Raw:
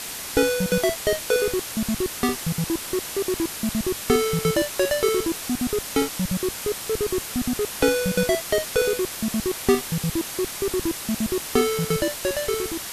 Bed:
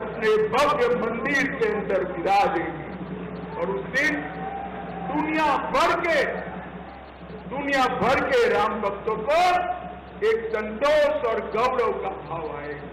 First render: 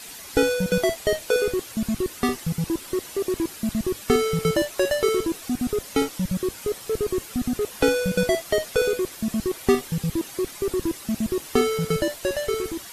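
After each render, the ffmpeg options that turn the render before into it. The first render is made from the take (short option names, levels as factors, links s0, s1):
-af "afftdn=nr=10:nf=-34"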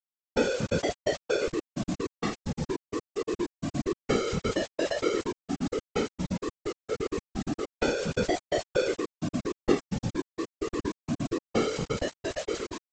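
-af "aresample=16000,aeval=exprs='val(0)*gte(abs(val(0)),0.0447)':c=same,aresample=44100,afftfilt=real='hypot(re,im)*cos(2*PI*random(0))':imag='hypot(re,im)*sin(2*PI*random(1))':win_size=512:overlap=0.75"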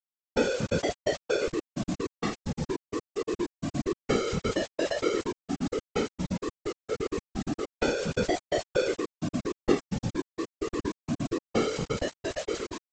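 -af anull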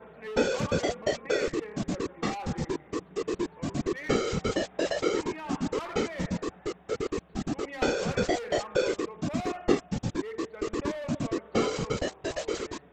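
-filter_complex "[1:a]volume=0.119[s0];[0:a][s0]amix=inputs=2:normalize=0"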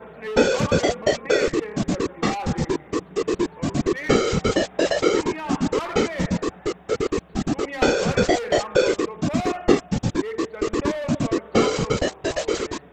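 -af "volume=2.51,alimiter=limit=0.708:level=0:latency=1"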